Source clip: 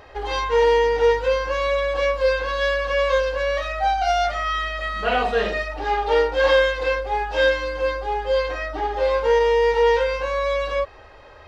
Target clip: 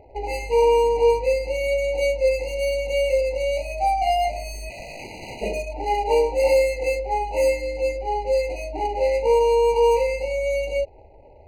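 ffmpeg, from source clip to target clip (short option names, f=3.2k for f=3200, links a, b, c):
-filter_complex "[0:a]asplit=3[a][b][c];[a]afade=t=out:st=4.69:d=0.02[d];[b]aeval=exprs='(mod(17.8*val(0)+1,2)-1)/17.8':c=same,afade=t=in:st=4.69:d=0.02,afade=t=out:st=5.41:d=0.02[e];[c]afade=t=in:st=5.41:d=0.02[f];[d][e][f]amix=inputs=3:normalize=0,adynamicsmooth=sensitivity=5:basefreq=520,afftfilt=real='re*eq(mod(floor(b*sr/1024/990),2),0)':imag='im*eq(mod(floor(b*sr/1024/990),2),0)':win_size=1024:overlap=0.75"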